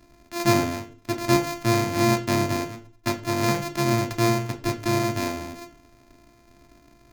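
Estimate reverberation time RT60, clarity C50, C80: 0.40 s, 14.0 dB, 19.0 dB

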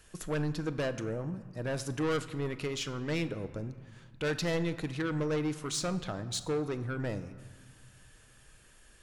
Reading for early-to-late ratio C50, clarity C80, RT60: 13.5 dB, 14.5 dB, 1.9 s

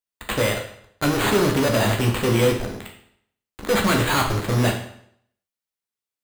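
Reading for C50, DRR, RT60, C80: 7.5 dB, 1.5 dB, 0.65 s, 10.0 dB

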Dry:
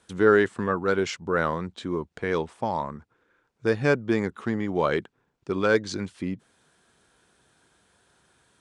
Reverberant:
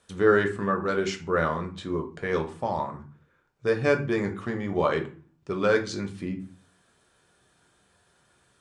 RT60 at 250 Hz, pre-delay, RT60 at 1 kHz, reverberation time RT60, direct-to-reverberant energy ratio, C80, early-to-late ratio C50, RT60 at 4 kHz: 0.60 s, 5 ms, 0.40 s, 0.40 s, 3.5 dB, 17.0 dB, 12.0 dB, 0.30 s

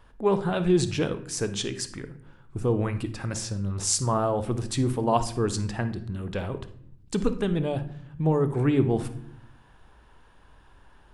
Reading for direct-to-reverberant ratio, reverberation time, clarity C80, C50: 10.0 dB, 0.65 s, 16.5 dB, 12.0 dB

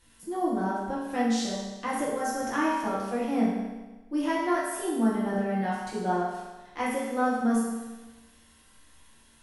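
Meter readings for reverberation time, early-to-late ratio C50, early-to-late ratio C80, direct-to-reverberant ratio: 1.2 s, 0.0 dB, 2.5 dB, −7.5 dB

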